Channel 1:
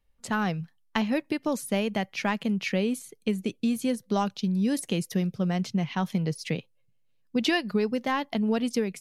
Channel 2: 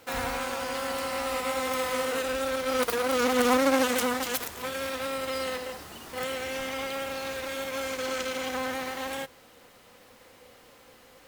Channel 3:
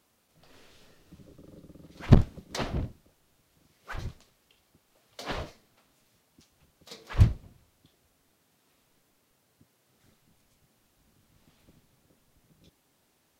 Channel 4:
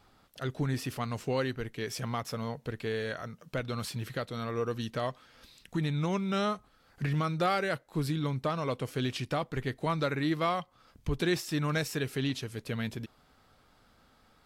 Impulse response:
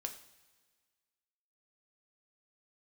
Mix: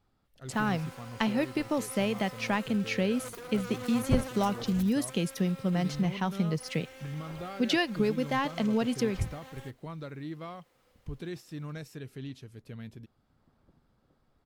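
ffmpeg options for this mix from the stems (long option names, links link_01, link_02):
-filter_complex "[0:a]adelay=250,volume=-2dB[link_01];[1:a]adelay=450,volume=-16.5dB[link_02];[2:a]lowpass=frequency=1500:width=0.5412,lowpass=frequency=1500:width=1.3066,adelay=2000,volume=-4.5dB[link_03];[3:a]lowshelf=frequency=410:gain=9,volume=-15.5dB,asplit=2[link_04][link_05];[link_05]apad=whole_len=678758[link_06];[link_03][link_06]sidechaincompress=threshold=-46dB:ratio=8:attack=16:release=809[link_07];[link_01][link_02][link_07][link_04]amix=inputs=4:normalize=0"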